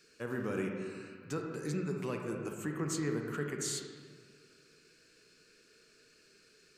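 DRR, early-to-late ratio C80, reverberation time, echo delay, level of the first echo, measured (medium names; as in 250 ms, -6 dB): 2.0 dB, 4.5 dB, 1.8 s, no echo, no echo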